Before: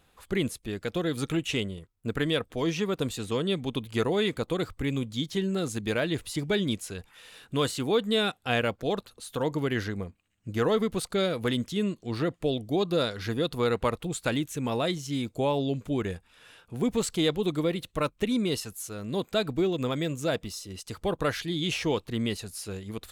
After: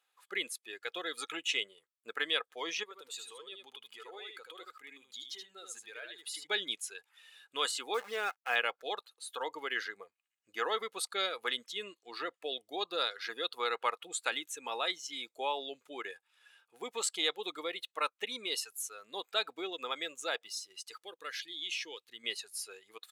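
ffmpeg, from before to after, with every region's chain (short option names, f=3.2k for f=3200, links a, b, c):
-filter_complex "[0:a]asettb=1/sr,asplit=3[a][b][c];[a]atrim=end=2.834[d];[b]atrim=start=2.83:end=6.47,asetpts=PTS-STARTPTS,afade=t=in:d=0.004:c=qsin,afade=t=out:st=3.636:d=0.004:c=qsin,acompressor=threshold=-34dB:ratio=12:attack=3.2:release=140:knee=1:detection=peak,aecho=1:1:77:0.631,atrim=end_sample=160524[e];[c]atrim=start=6.466[f];[d][e]acrossfade=d=0.004:c1=hsin:c2=qsin[g];[g][f]acrossfade=d=0.004:c1=qsin:c2=hsin,asettb=1/sr,asplit=3[h][i][j];[h]atrim=end=7.944[k];[i]atrim=start=7.94:end=8.56,asetpts=PTS-STARTPTS,afade=t=in:d=0.004:c=qsin,afade=t=out:st=0.616:d=0.004:c=qsin,lowpass=f=2.2k:w=0.5412,lowpass=f=2.2k:w=1.3066,acrusher=bits=7:dc=4:mix=0:aa=0.000001[l];[j]atrim=start=8.556[m];[k][l]acrossfade=d=0.004:c1=hsin:c2=qsin[n];[n][m]acrossfade=d=0.004:c1=qsin:c2=hsin,asettb=1/sr,asplit=3[o][p][q];[o]atrim=end=21.024[r];[p]atrim=start=21.02:end=22.24,asetpts=PTS-STARTPTS,afade=t=in:d=0.004:c=qsin,afade=t=out:st=1.216:d=0.004:c=qsin,equalizer=f=870:t=o:w=1.6:g=-10.5,acompressor=threshold=-36dB:ratio=1.5:attack=3.2:release=140:knee=1:detection=peak[s];[q]atrim=start=22.236[t];[r][s]acrossfade=d=0.004:c1=hsin:c2=qsin[u];[u][t]acrossfade=d=0.004:c1=qsin:c2=hsin,highpass=960,afftdn=nr=12:nf=-44,aecho=1:1:2.4:0.3"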